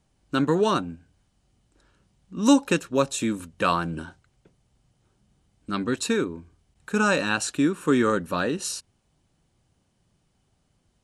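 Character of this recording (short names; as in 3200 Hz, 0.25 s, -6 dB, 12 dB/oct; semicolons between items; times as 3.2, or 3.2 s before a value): noise floor -70 dBFS; spectral tilt -4.5 dB/oct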